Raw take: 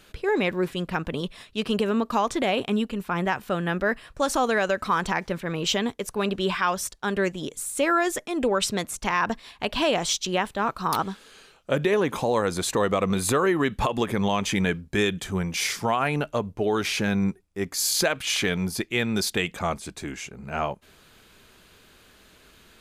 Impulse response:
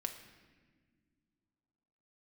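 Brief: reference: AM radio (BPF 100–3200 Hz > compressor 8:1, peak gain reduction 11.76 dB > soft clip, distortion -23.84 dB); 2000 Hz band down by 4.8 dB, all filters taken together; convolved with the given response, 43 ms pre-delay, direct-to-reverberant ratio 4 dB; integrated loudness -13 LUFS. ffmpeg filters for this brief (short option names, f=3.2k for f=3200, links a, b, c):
-filter_complex "[0:a]equalizer=f=2k:t=o:g=-5.5,asplit=2[a][b];[1:a]atrim=start_sample=2205,adelay=43[c];[b][c]afir=irnorm=-1:irlink=0,volume=-3.5dB[d];[a][d]amix=inputs=2:normalize=0,highpass=100,lowpass=3.2k,acompressor=threshold=-28dB:ratio=8,asoftclip=threshold=-20.5dB,volume=20.5dB"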